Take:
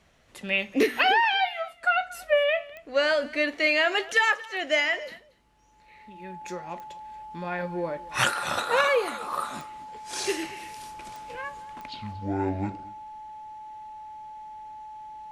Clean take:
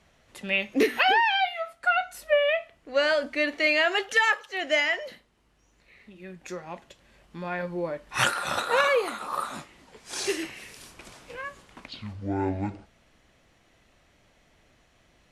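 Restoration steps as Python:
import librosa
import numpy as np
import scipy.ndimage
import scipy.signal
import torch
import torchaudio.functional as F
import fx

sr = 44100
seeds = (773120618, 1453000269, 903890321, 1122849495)

y = fx.fix_declick_ar(x, sr, threshold=10.0)
y = fx.notch(y, sr, hz=860.0, q=30.0)
y = fx.fix_echo_inverse(y, sr, delay_ms=231, level_db=-20.5)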